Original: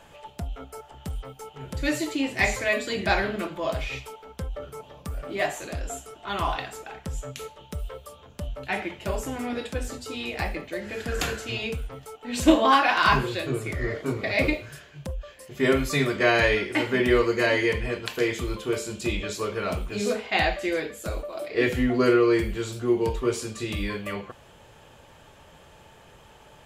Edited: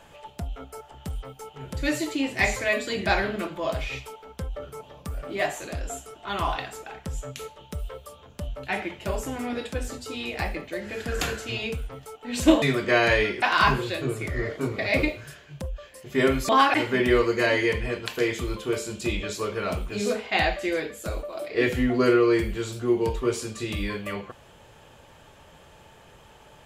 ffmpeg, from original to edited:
-filter_complex "[0:a]asplit=5[s0][s1][s2][s3][s4];[s0]atrim=end=12.622[s5];[s1]atrim=start=15.938:end=16.742[s6];[s2]atrim=start=12.868:end=15.942[s7];[s3]atrim=start=12.618:end=12.872[s8];[s4]atrim=start=16.738[s9];[s5][s6]acrossfade=d=0.004:c1=hsin:c2=hsin[s10];[s10][s7]acrossfade=d=0.004:c1=hsin:c2=hsin[s11];[s11][s8]acrossfade=d=0.004:c1=hsin:c2=hsin[s12];[s12][s9]acrossfade=d=0.004:c1=hsin:c2=hsin"

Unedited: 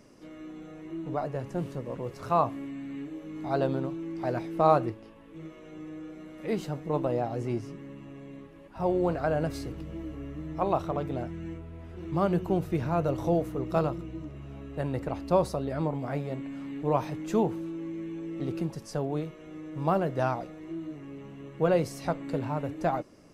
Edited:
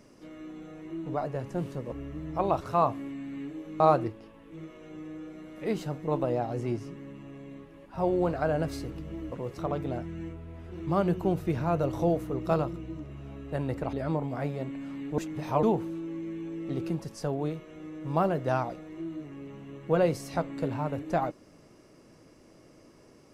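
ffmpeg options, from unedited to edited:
-filter_complex "[0:a]asplit=9[s0][s1][s2][s3][s4][s5][s6][s7][s8];[s0]atrim=end=1.922[s9];[s1]atrim=start=10.138:end=10.832[s10];[s2]atrim=start=2.178:end=3.372[s11];[s3]atrim=start=4.618:end=10.142[s12];[s4]atrim=start=1.918:end=2.182[s13];[s5]atrim=start=10.828:end=15.182[s14];[s6]atrim=start=15.638:end=16.892[s15];[s7]atrim=start=16.888:end=17.342,asetpts=PTS-STARTPTS,areverse[s16];[s8]atrim=start=17.338[s17];[s9][s10]acrossfade=d=0.004:c1=hsin:c2=hsin[s18];[s18][s11]acrossfade=d=0.004:c1=hsin:c2=hsin[s19];[s19][s12]acrossfade=d=0.004:c1=hsin:c2=hsin[s20];[s20][s13]acrossfade=d=0.004:c1=hsin:c2=hsin[s21];[s21][s14]acrossfade=d=0.004:c1=hsin:c2=hsin[s22];[s22][s15]acrossfade=d=0.004:c1=hsin:c2=hsin[s23];[s23][s16]acrossfade=d=0.004:c1=hsin:c2=hsin[s24];[s24][s17]acrossfade=d=0.004:c1=hsin:c2=hsin"

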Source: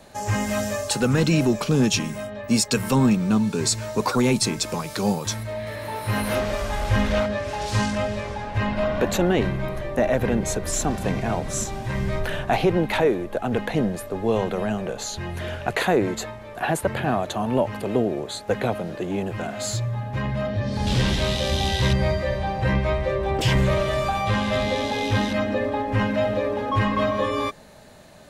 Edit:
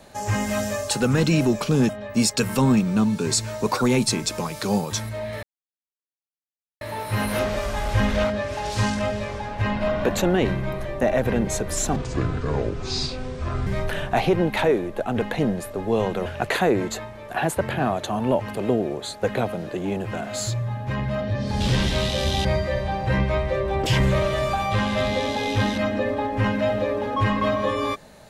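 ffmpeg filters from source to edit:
-filter_complex "[0:a]asplit=7[s0][s1][s2][s3][s4][s5][s6];[s0]atrim=end=1.892[s7];[s1]atrim=start=2.228:end=5.77,asetpts=PTS-STARTPTS,afade=t=out:st=3.538:d=0.004:c=hsin,apad=pad_dur=1.38[s8];[s2]atrim=start=5.77:end=10.924,asetpts=PTS-STARTPTS,afade=t=in:d=0.004:c=hsin[s9];[s3]atrim=start=10.92:end=12.03,asetpts=PTS-STARTPTS,asetrate=28665,aresample=44100,atrim=end_sample=75309,asetpts=PTS-STARTPTS[s10];[s4]atrim=start=12.026:end=14.622[s11];[s5]atrim=start=15.518:end=21.712[s12];[s6]atrim=start=21.998[s13];[s8][s9]concat=n=2:v=0:a=1[s14];[s7][s14]acrossfade=d=0.004:c1=hsin:c2=hsin[s15];[s15][s10]acrossfade=d=0.004:c1=hsin:c2=hsin[s16];[s16][s11]acrossfade=d=0.004:c1=hsin:c2=hsin[s17];[s17][s12]acrossfade=d=0.004:c1=hsin:c2=hsin[s18];[s18][s13]acrossfade=d=0.004:c1=hsin:c2=hsin"

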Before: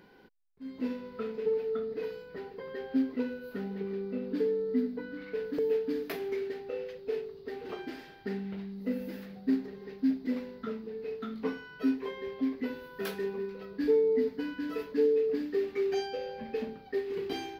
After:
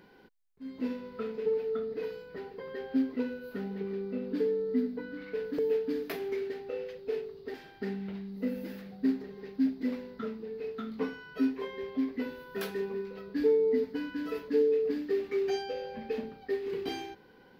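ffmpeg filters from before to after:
-filter_complex "[0:a]asplit=2[s0][s1];[s0]atrim=end=7.542[s2];[s1]atrim=start=7.978[s3];[s2][s3]acrossfade=d=0.004:c1=hsin:c2=hsin"

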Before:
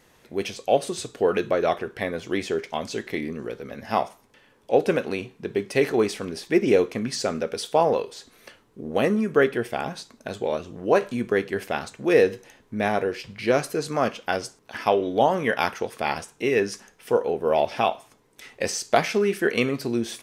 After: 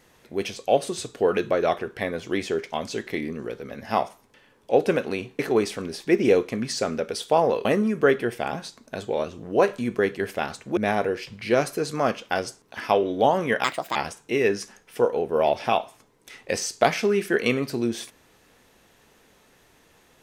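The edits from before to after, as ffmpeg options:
-filter_complex "[0:a]asplit=6[s0][s1][s2][s3][s4][s5];[s0]atrim=end=5.392[s6];[s1]atrim=start=5.818:end=8.082[s7];[s2]atrim=start=8.978:end=12.102[s8];[s3]atrim=start=12.738:end=15.614[s9];[s4]atrim=start=15.61:end=16.07,asetpts=PTS-STARTPTS,asetrate=64386,aresample=44100[s10];[s5]atrim=start=16.066[s11];[s6][s7]acrossfade=d=0.004:c1=hsin:c2=hsin[s12];[s12][s8]acrossfade=d=0.004:c1=hsin:c2=hsin[s13];[s13][s9]acrossfade=d=0.004:c1=hsin:c2=hsin[s14];[s14][s10]acrossfade=d=0.004:c1=hsin:c2=hsin[s15];[s15][s11]acrossfade=d=0.004:c1=hsin:c2=hsin"

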